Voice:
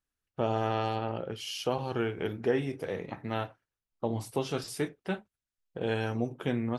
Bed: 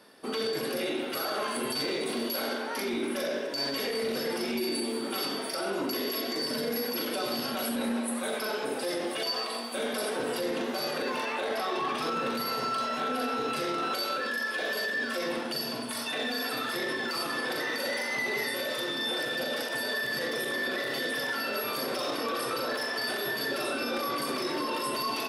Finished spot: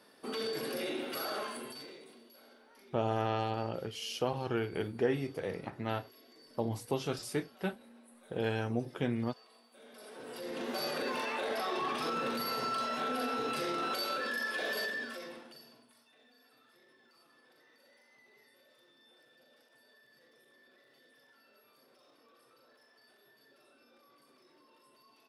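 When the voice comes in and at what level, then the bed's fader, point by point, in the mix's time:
2.55 s, -2.5 dB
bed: 1.36 s -5.5 dB
2.25 s -27.5 dB
9.72 s -27.5 dB
10.75 s -4 dB
14.83 s -4 dB
16.07 s -33.5 dB

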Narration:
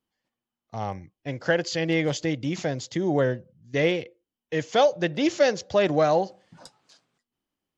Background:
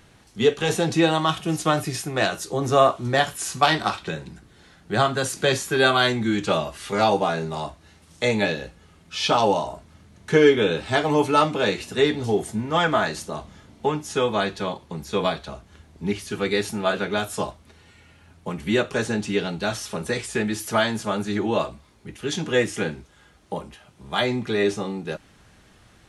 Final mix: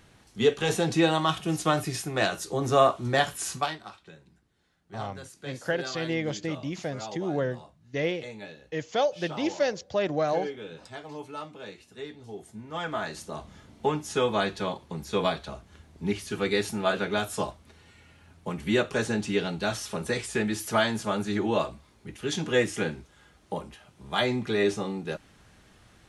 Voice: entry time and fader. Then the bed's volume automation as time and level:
4.20 s, -5.5 dB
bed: 3.54 s -3.5 dB
3.79 s -20 dB
12.23 s -20 dB
13.55 s -3 dB

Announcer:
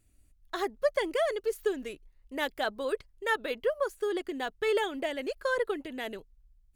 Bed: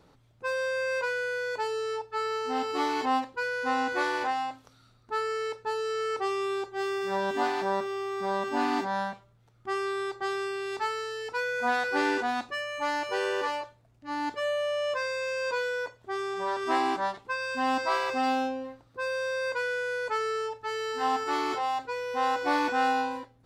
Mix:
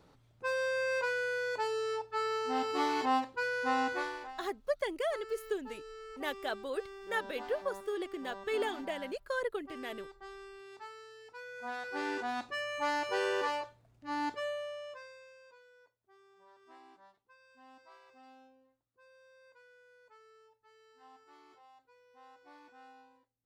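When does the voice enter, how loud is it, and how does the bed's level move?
3.85 s, -5.5 dB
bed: 3.86 s -3 dB
4.32 s -17.5 dB
11.37 s -17.5 dB
12.65 s -3 dB
14.25 s -3 dB
15.59 s -31 dB

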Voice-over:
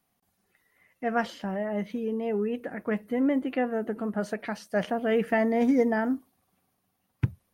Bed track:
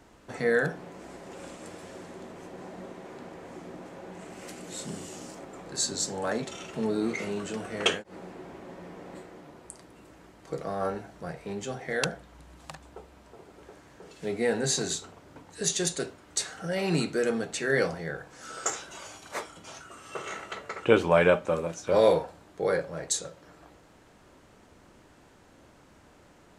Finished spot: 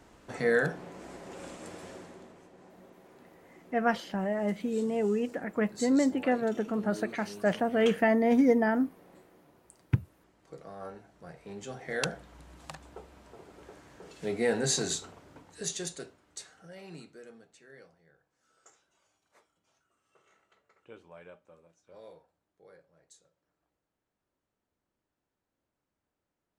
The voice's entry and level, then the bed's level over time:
2.70 s, 0.0 dB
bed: 1.89 s -1 dB
2.50 s -12.5 dB
11.04 s -12.5 dB
12.21 s -1 dB
15.10 s -1 dB
17.91 s -30 dB

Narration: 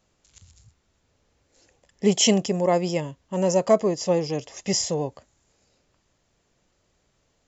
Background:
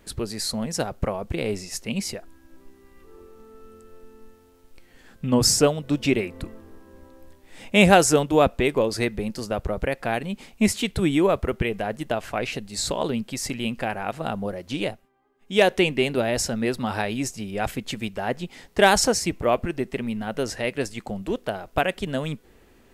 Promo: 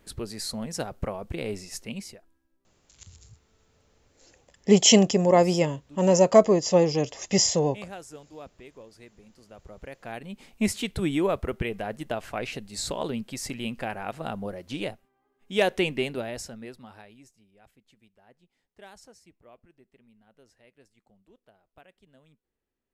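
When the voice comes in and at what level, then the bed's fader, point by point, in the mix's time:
2.65 s, +2.5 dB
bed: 1.84 s -5.5 dB
2.57 s -26 dB
9.29 s -26 dB
10.56 s -5 dB
15.97 s -5 dB
17.54 s -32 dB

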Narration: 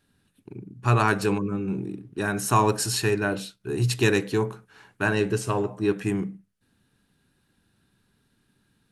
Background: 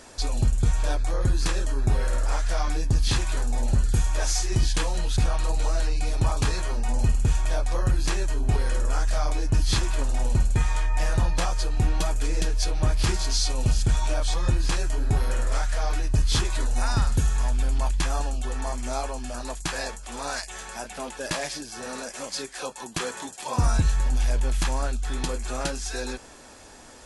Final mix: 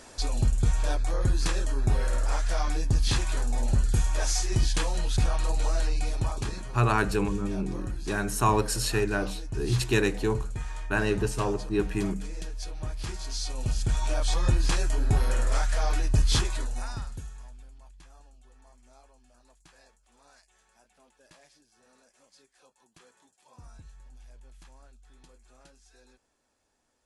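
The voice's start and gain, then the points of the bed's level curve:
5.90 s, -3.0 dB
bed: 5.99 s -2 dB
6.68 s -12 dB
13.04 s -12 dB
14.36 s -0.5 dB
16.34 s -0.5 dB
17.78 s -28 dB

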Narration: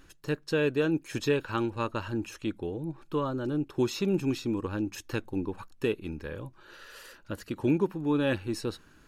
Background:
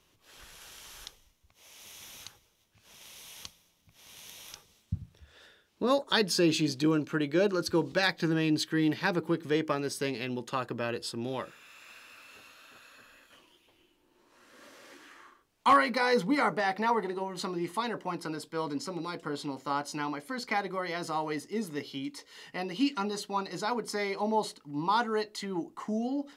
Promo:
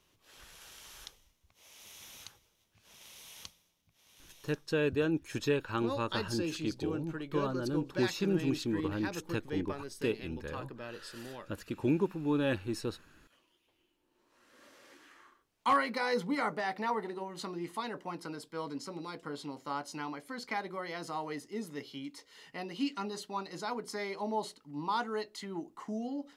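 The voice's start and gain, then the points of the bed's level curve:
4.20 s, -3.5 dB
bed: 3.44 s -3 dB
4.02 s -11 dB
13.47 s -11 dB
14.57 s -5.5 dB

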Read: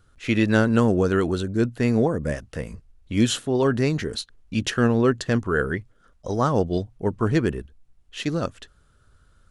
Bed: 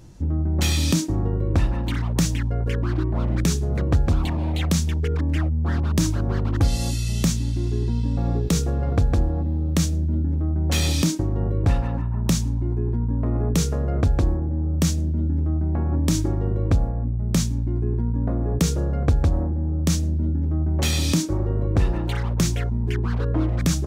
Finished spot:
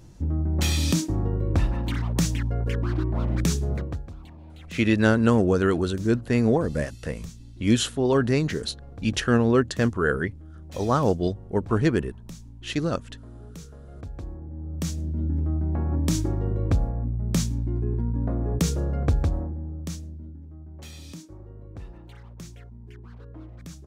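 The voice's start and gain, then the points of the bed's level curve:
4.50 s, -0.5 dB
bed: 3.72 s -2.5 dB
4.11 s -21 dB
13.86 s -21 dB
15.30 s -3 dB
19.16 s -3 dB
20.48 s -20.5 dB

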